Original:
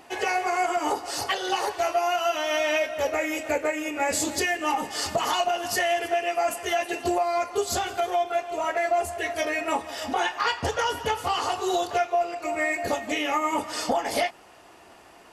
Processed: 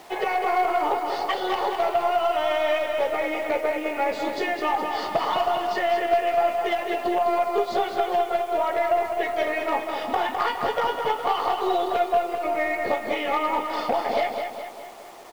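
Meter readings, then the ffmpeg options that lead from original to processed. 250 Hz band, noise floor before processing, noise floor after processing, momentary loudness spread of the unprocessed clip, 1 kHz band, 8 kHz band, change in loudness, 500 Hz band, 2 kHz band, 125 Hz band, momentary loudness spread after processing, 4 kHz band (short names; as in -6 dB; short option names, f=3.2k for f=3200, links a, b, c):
0.0 dB, -51 dBFS, -38 dBFS, 3 LU, +3.0 dB, under -10 dB, +1.5 dB, +3.0 dB, -1.5 dB, n/a, 4 LU, -3.0 dB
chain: -af "acompressor=threshold=-26dB:ratio=2.5,highpass=260,equalizer=f=280:t=q:w=4:g=-6,equalizer=f=1.6k:t=q:w=4:g=-9,equalizer=f=2.7k:t=q:w=4:g=-9,lowpass=f=3.4k:w=0.5412,lowpass=f=3.4k:w=1.3066,aeval=exprs='0.112*(cos(1*acos(clip(val(0)/0.112,-1,1)))-cos(1*PI/2))+0.0251*(cos(2*acos(clip(val(0)/0.112,-1,1)))-cos(2*PI/2))+0.0126*(cos(4*acos(clip(val(0)/0.112,-1,1)))-cos(4*PI/2))':c=same,aecho=1:1:207|414|621|828|1035|1242:0.501|0.251|0.125|0.0626|0.0313|0.0157,acrusher=bits=8:mix=0:aa=0.000001,volume=5.5dB"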